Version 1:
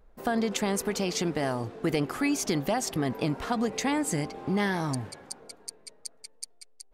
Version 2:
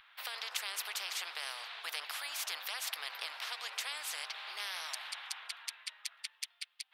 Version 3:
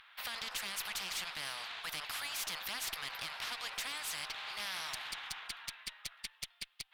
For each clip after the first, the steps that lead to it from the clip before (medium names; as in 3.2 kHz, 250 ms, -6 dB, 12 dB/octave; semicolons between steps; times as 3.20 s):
Bessel high-pass 1.9 kHz, order 6; resonant high shelf 4.8 kHz -13.5 dB, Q 3; spectrum-flattening compressor 4:1; trim -5.5 dB
valve stage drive 35 dB, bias 0.35; trim +3 dB